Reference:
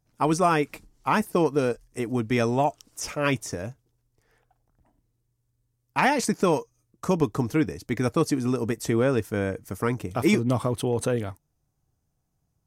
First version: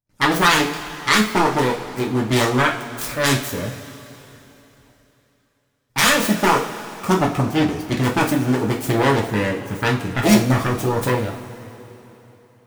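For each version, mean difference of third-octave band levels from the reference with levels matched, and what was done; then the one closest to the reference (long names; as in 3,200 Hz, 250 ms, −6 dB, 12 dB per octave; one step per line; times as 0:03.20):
9.5 dB: phase distortion by the signal itself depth 0.68 ms
noise gate with hold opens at −57 dBFS
coupled-rooms reverb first 0.35 s, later 3.4 s, from −18 dB, DRR −2 dB
level +3 dB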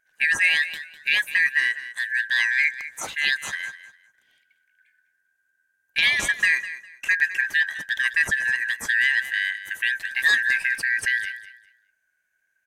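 16.5 dB: band-splitting scrambler in four parts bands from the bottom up 4123
low-shelf EQ 330 Hz +5.5 dB
repeating echo 202 ms, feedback 23%, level −14 dB
level +1 dB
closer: first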